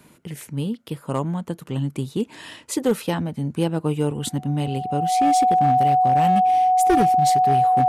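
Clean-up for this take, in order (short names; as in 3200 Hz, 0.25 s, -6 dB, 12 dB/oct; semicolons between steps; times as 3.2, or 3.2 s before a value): clip repair -12 dBFS; notch 740 Hz, Q 30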